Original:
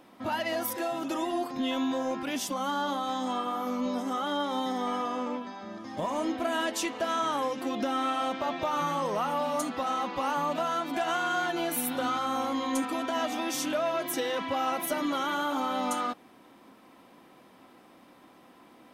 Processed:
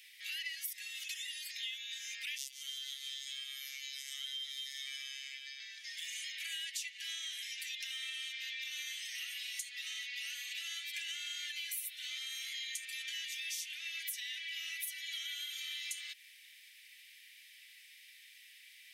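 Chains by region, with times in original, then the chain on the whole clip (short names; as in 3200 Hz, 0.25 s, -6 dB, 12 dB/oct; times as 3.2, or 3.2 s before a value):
2.38–5.6 robotiser 137 Hz + feedback echo 0.149 s, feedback 57%, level -13.5 dB
whole clip: steep high-pass 1900 Hz 72 dB/oct; compressor 6:1, threshold -48 dBFS; gain +8.5 dB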